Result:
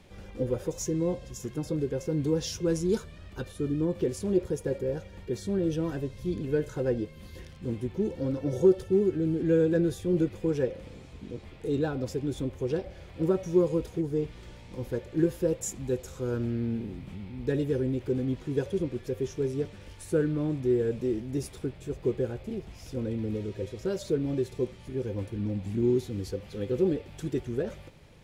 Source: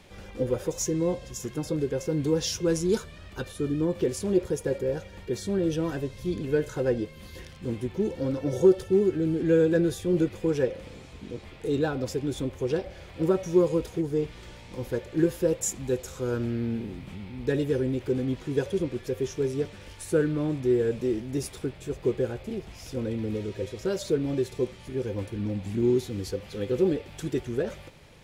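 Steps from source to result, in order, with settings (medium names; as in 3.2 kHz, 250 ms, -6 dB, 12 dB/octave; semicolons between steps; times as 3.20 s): bass shelf 480 Hz +5.5 dB; trim -5.5 dB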